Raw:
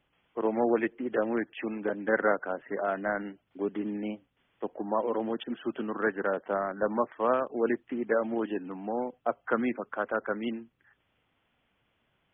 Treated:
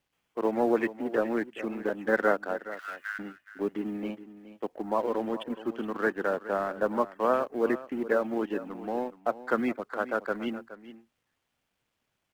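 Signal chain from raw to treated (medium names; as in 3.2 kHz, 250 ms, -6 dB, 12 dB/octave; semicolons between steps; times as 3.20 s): companding laws mixed up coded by A; 2.67–3.19 s: steep high-pass 1.4 kHz 36 dB/octave; delay 420 ms -14.5 dB; trim +1.5 dB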